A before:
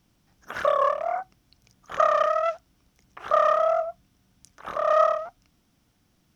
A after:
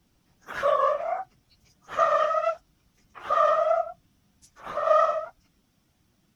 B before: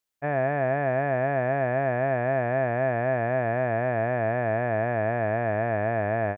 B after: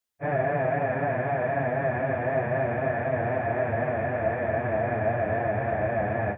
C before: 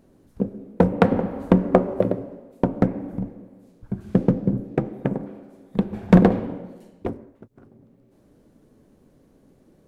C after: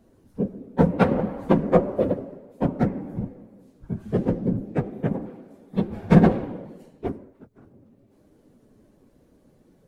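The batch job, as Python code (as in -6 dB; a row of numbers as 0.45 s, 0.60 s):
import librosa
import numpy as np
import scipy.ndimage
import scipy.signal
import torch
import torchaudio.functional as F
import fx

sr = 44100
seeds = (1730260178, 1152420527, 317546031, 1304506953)

y = fx.phase_scramble(x, sr, seeds[0], window_ms=50)
y = y * librosa.db_to_amplitude(-1.0)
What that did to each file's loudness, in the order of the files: -1.0 LU, -1.0 LU, -1.5 LU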